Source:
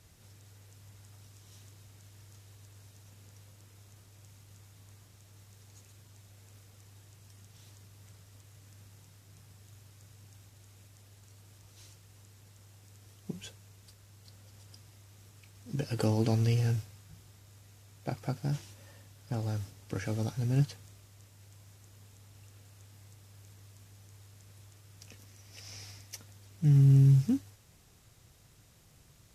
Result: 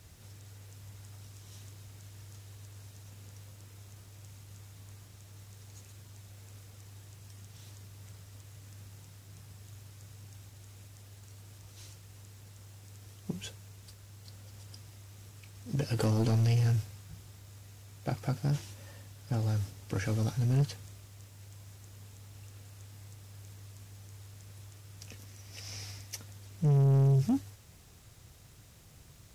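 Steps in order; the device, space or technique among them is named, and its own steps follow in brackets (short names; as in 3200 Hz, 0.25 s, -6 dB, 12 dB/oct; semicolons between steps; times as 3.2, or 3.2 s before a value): open-reel tape (soft clip -26 dBFS, distortion -9 dB; bell 74 Hz +3.5 dB 0.92 oct; white noise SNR 38 dB); gain +3.5 dB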